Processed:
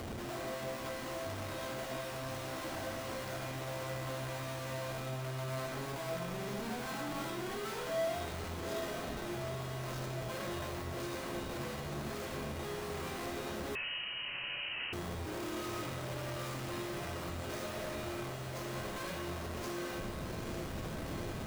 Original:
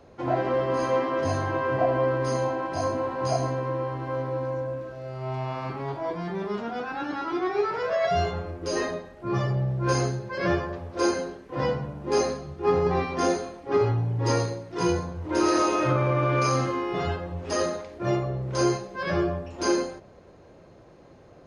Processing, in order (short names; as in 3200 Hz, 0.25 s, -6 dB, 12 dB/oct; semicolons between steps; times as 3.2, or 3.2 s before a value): HPF 51 Hz 24 dB/oct; tilt -1.5 dB/oct; upward compressor, threshold -38 dBFS; Schmitt trigger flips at -46.5 dBFS; resonator 220 Hz, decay 0.69 s, harmonics odd, mix 80%; diffused feedback echo 0.866 s, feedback 69%, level -8 dB; reverb RT60 0.70 s, pre-delay 15 ms, DRR 4.5 dB; 13.75–14.93 inverted band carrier 3000 Hz; gain -4.5 dB